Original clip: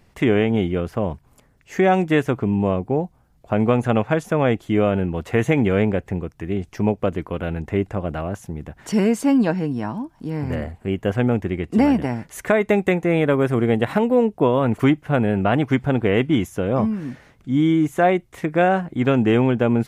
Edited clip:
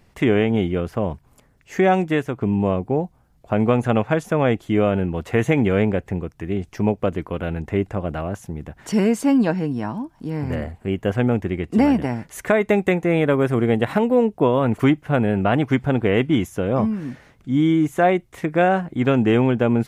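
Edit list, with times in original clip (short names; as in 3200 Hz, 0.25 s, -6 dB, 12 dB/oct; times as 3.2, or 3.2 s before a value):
1.9–2.41 fade out, to -7 dB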